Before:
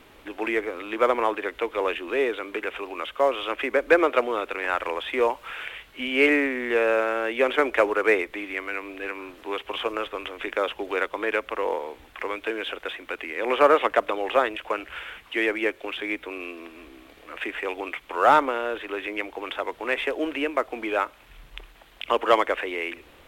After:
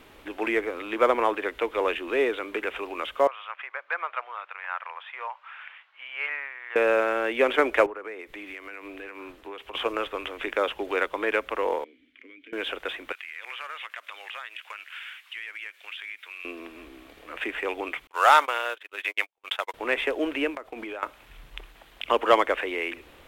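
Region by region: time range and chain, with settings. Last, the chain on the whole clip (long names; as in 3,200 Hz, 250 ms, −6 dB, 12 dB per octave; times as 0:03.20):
0:03.27–0:06.76: high-pass filter 940 Hz 24 dB per octave + head-to-tape spacing loss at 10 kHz 39 dB
0:07.86–0:09.75: downward compressor 12 to 1, threshold −34 dBFS + multiband upward and downward expander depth 100%
0:11.84–0:12.53: formant filter i + downward compressor 4 to 1, threshold −45 dBFS
0:13.12–0:16.45: Chebyshev high-pass filter 2,000 Hz + downward compressor 4 to 1, threshold −34 dBFS
0:18.07–0:19.74: high-pass filter 730 Hz + high-shelf EQ 2,400 Hz +10 dB + noise gate −32 dBFS, range −48 dB
0:20.55–0:21.03: downward expander −39 dBFS + downward compressor 12 to 1, threshold −32 dBFS
whole clip: no processing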